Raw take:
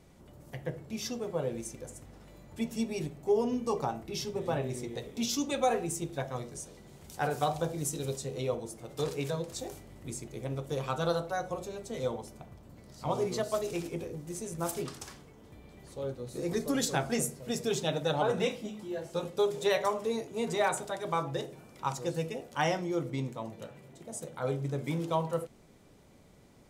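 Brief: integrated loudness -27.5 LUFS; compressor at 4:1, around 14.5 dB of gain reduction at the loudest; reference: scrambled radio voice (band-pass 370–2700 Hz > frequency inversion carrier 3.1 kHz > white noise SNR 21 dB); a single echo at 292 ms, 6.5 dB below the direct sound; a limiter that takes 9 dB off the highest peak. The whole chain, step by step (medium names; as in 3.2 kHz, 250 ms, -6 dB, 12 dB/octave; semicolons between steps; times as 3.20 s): compression 4:1, threshold -41 dBFS; peak limiter -35 dBFS; band-pass 370–2700 Hz; delay 292 ms -6.5 dB; frequency inversion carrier 3.1 kHz; white noise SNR 21 dB; trim +18 dB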